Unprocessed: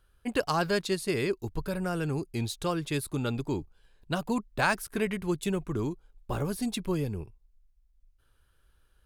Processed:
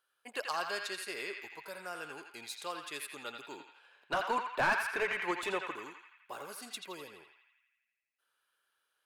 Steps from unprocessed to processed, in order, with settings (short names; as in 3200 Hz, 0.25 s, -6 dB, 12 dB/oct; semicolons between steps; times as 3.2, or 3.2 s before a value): HPF 670 Hz 12 dB/oct; 3.6–5.71 overdrive pedal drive 25 dB, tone 1000 Hz, clips at -11 dBFS; on a send: narrowing echo 84 ms, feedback 72%, band-pass 2100 Hz, level -3.5 dB; on the sum: gain -6 dB